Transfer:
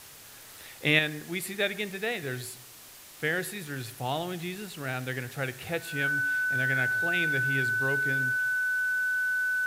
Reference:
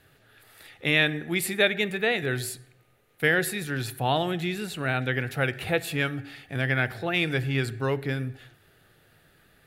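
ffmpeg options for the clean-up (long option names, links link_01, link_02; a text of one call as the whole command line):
ffmpeg -i in.wav -af "adeclick=threshold=4,bandreject=frequency=1500:width=30,afwtdn=0.004,asetnsamples=nb_out_samples=441:pad=0,asendcmd='0.99 volume volume 6.5dB',volume=0dB" out.wav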